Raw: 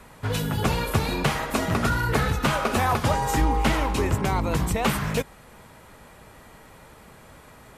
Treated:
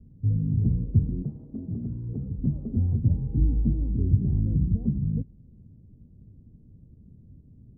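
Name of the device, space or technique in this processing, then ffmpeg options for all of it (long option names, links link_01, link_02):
the neighbour's flat through the wall: -filter_complex "[0:a]lowpass=frequency=260:width=0.5412,lowpass=frequency=260:width=1.3066,equalizer=frequency=100:width_type=o:width=0.82:gain=6,asettb=1/sr,asplit=3[link_01][link_02][link_03];[link_01]atrim=end=1.224[link_04];[link_02]atrim=start=1.22:end=2.39,asetpts=PTS-STARTPTS,afade=type=in:duration=0.004:curve=qsin,afade=type=out:start_time=1.166:duration=0.004:curve=qsin,aemphasis=mode=production:type=bsi[link_05];[link_03]atrim=start=2.386[link_06];[link_04][link_05]acrossfade=duration=0.004:curve1=hsin:curve2=qsin[link_07];[link_07][link_06]acrossfade=duration=0.004:curve1=qsin:curve2=hsin"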